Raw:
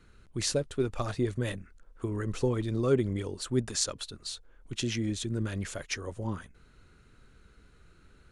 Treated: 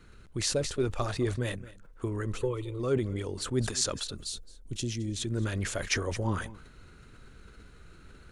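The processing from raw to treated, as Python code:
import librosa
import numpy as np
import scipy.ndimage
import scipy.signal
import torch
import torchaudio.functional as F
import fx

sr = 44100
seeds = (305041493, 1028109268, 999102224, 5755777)

y = fx.rider(x, sr, range_db=4, speed_s=0.5)
y = fx.fixed_phaser(y, sr, hz=1100.0, stages=8, at=(2.37, 2.79), fade=0.02)
y = fx.peak_eq(y, sr, hz=1400.0, db=-14.5, octaves=2.6, at=(4.15, 5.16))
y = y + 10.0 ** (-20.5 / 20.0) * np.pad(y, (int(217 * sr / 1000.0), 0))[:len(y)]
y = fx.dynamic_eq(y, sr, hz=200.0, q=1.2, threshold_db=-40.0, ratio=4.0, max_db=-4)
y = fx.sustainer(y, sr, db_per_s=84.0)
y = y * librosa.db_to_amplitude(1.5)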